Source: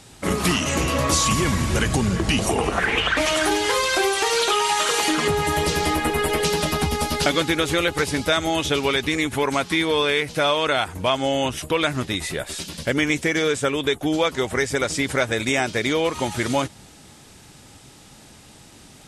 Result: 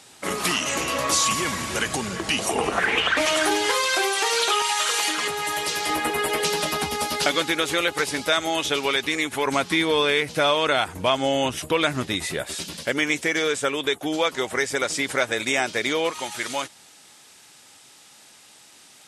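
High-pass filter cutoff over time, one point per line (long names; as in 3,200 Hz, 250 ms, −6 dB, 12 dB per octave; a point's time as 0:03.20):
high-pass filter 6 dB per octave
590 Hz
from 0:02.55 270 Hz
from 0:03.71 590 Hz
from 0:04.62 1,200 Hz
from 0:05.89 470 Hz
from 0:09.46 130 Hz
from 0:12.77 430 Hz
from 0:16.11 1,200 Hz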